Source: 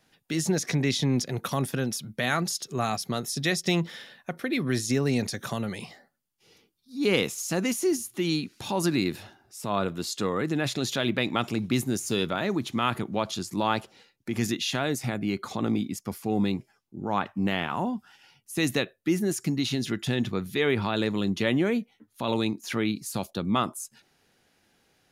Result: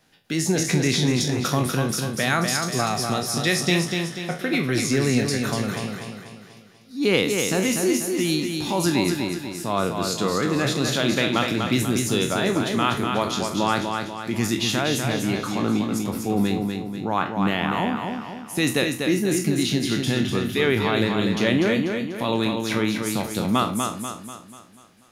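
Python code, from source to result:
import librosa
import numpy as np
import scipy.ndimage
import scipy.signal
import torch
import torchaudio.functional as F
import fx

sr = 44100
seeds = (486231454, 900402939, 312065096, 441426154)

y = fx.spec_trails(x, sr, decay_s=0.33)
y = fx.echo_feedback(y, sr, ms=244, feedback_pct=47, wet_db=-5.0)
y = y * librosa.db_to_amplitude(3.0)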